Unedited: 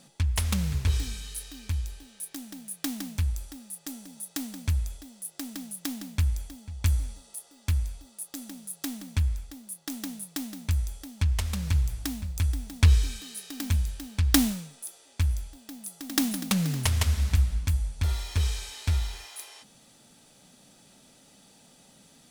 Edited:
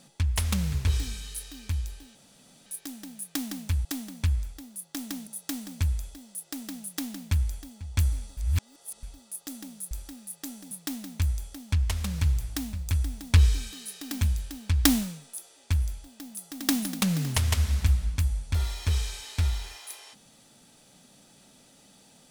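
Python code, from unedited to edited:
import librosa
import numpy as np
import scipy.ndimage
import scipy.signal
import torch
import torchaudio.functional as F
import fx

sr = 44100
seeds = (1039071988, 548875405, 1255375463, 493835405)

y = fx.edit(x, sr, fx.insert_room_tone(at_s=2.15, length_s=0.51),
    fx.swap(start_s=3.34, length_s=0.8, other_s=8.78, other_length_s=1.42),
    fx.reverse_span(start_s=7.24, length_s=0.66), tone=tone)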